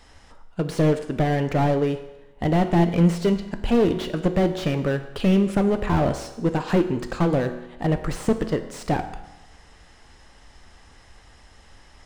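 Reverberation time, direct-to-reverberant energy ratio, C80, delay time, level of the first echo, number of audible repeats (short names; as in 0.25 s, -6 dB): 1.0 s, 8.0 dB, 12.5 dB, none, none, none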